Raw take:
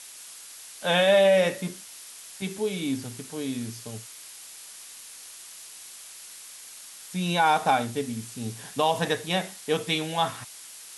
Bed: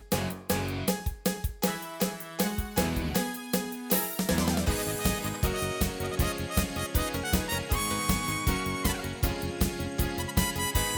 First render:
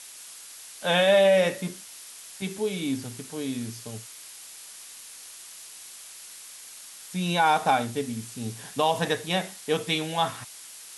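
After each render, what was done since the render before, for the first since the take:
no processing that can be heard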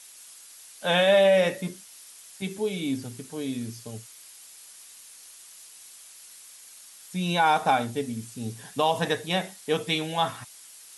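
broadband denoise 6 dB, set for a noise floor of −45 dBFS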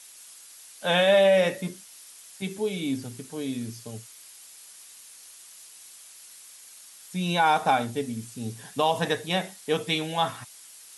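high-pass filter 54 Hz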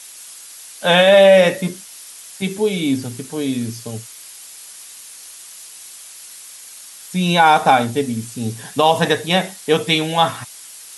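level +10 dB
brickwall limiter −2 dBFS, peak gain reduction 2.5 dB

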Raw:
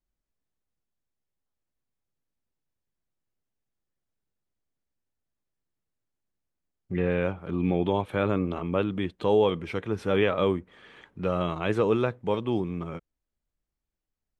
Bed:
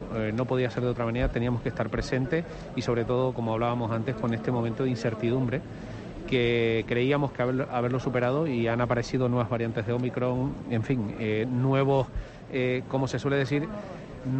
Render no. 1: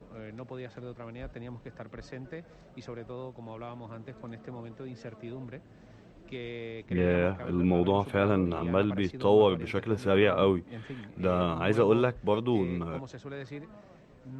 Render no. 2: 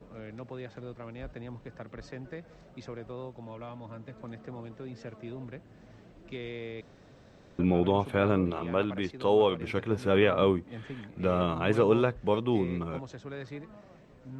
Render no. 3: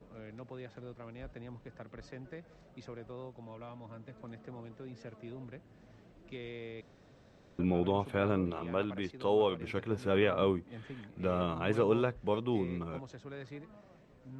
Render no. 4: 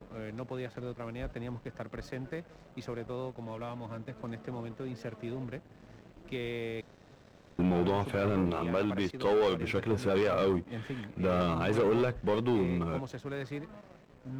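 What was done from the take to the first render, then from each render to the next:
mix in bed −15 dB
0:03.45–0:04.19: notch comb filter 380 Hz; 0:06.81–0:07.59: fill with room tone; 0:08.50–0:09.61: low-shelf EQ 260 Hz −7 dB
level −5 dB
brickwall limiter −21 dBFS, peak gain reduction 6 dB; leveller curve on the samples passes 2

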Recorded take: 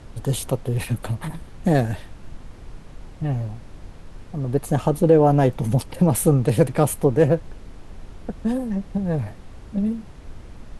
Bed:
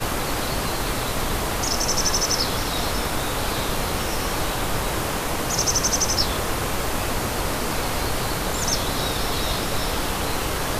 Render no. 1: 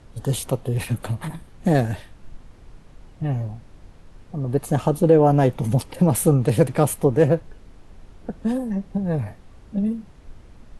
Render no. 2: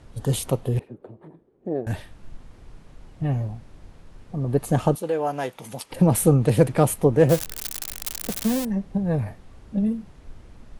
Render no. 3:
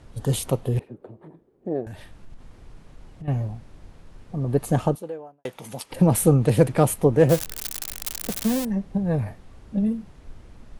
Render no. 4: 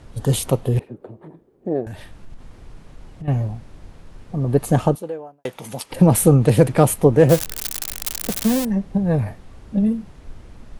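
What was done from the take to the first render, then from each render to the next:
noise reduction from a noise print 6 dB
0:00.79–0:01.87: resonant band-pass 390 Hz, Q 3.8; 0:04.95–0:05.91: high-pass filter 1,400 Hz 6 dB per octave; 0:07.29–0:08.65: spike at every zero crossing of −14 dBFS
0:01.85–0:03.28: downward compressor 4 to 1, threshold −36 dBFS; 0:04.67–0:05.45: fade out and dull
level +4.5 dB; brickwall limiter −1 dBFS, peak gain reduction 2 dB

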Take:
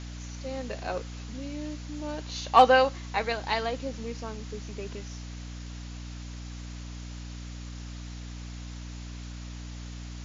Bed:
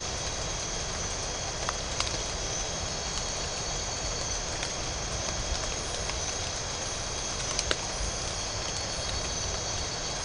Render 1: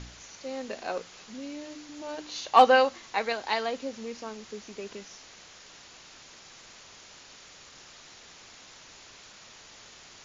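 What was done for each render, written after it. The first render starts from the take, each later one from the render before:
hum removal 60 Hz, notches 5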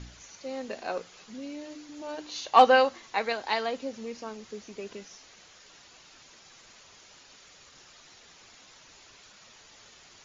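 broadband denoise 6 dB, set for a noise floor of −51 dBFS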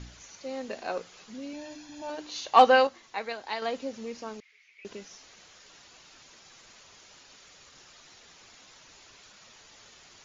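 0:01.53–0:02.10: comb filter 1.2 ms, depth 72%
0:02.87–0:03.62: clip gain −5.5 dB
0:04.40–0:04.85: four-pole ladder band-pass 2,300 Hz, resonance 80%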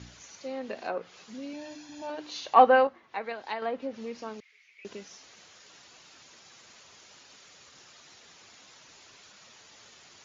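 high-pass filter 81 Hz
treble cut that deepens with the level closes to 1,800 Hz, closed at −28.5 dBFS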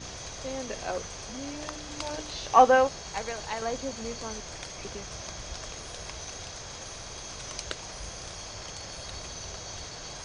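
mix in bed −8 dB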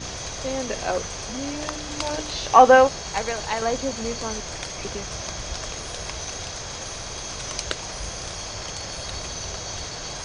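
level +7.5 dB
brickwall limiter −2 dBFS, peak gain reduction 3 dB

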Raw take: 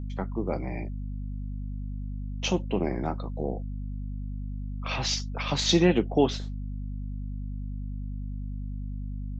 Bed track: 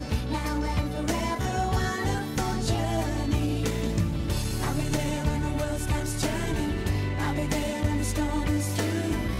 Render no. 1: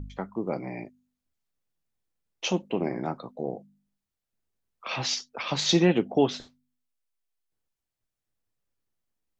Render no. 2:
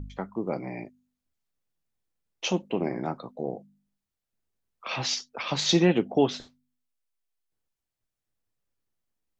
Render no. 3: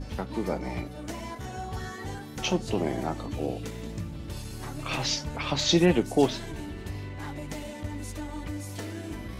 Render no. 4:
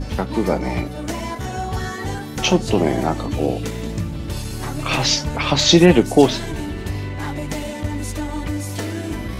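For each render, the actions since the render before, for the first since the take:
hum removal 50 Hz, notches 5
no processing that can be heard
mix in bed track −9.5 dB
level +10.5 dB; brickwall limiter −1 dBFS, peak gain reduction 2.5 dB

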